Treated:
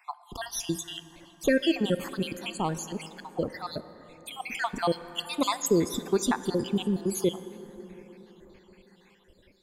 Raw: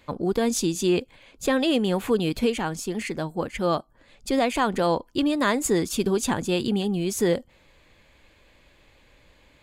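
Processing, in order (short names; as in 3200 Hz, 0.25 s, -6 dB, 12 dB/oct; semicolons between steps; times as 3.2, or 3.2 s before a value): random spectral dropouts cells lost 62%; 4.89–5.68 high shelf 5500 Hz +9.5 dB; plate-style reverb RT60 4.6 s, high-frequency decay 0.4×, DRR 12.5 dB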